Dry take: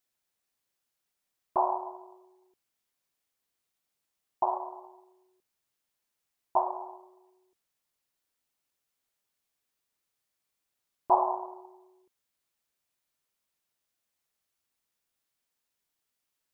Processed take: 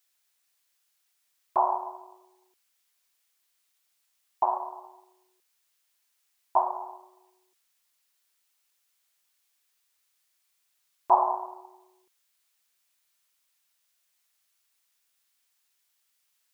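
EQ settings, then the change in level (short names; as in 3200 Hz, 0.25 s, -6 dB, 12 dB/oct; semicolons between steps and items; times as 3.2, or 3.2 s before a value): tilt shelf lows -9 dB, about 680 Hz; +1.0 dB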